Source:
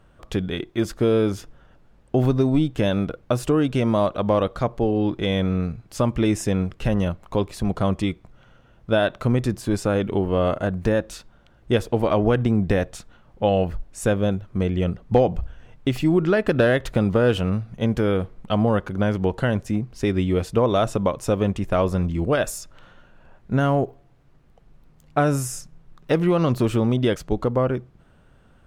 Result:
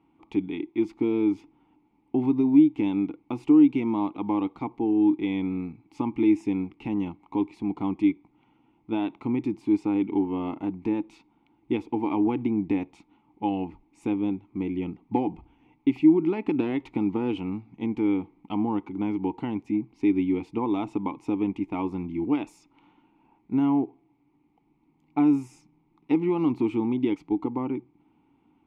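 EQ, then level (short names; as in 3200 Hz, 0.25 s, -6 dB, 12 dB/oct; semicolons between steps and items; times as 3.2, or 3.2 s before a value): vowel filter u; +7.0 dB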